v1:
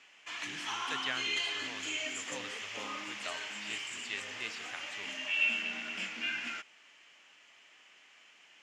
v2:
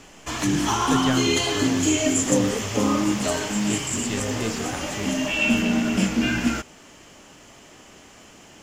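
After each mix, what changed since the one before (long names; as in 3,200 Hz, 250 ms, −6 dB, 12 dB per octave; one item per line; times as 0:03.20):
background +5.0 dB
master: remove resonant band-pass 2,400 Hz, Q 1.7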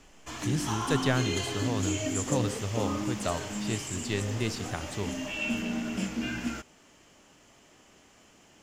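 background −10.5 dB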